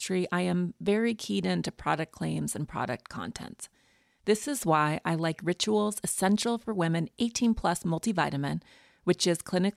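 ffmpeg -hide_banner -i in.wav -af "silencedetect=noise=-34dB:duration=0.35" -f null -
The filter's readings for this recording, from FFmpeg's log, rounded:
silence_start: 3.64
silence_end: 4.27 | silence_duration: 0.62
silence_start: 8.58
silence_end: 9.07 | silence_duration: 0.49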